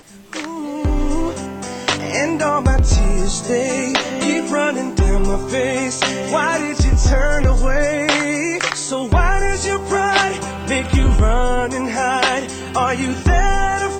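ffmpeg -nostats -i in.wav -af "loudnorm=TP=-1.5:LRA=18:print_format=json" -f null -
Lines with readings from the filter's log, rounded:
"input_i" : "-18.2",
"input_tp" : "-2.6",
"input_lra" : "1.3",
"input_thresh" : "-28.3",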